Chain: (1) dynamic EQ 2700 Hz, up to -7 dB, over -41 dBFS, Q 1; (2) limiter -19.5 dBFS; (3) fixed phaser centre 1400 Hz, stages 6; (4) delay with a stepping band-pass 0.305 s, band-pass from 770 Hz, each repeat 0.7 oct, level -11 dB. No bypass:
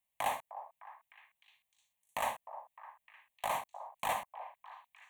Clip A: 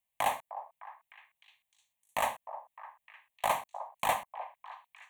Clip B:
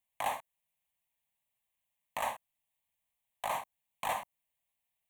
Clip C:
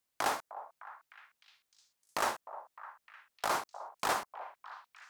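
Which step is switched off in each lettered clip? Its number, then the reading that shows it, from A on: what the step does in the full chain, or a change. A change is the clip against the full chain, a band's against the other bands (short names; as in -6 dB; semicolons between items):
2, mean gain reduction 2.5 dB; 4, echo-to-direct -13.5 dB to none; 3, 250 Hz band +5.0 dB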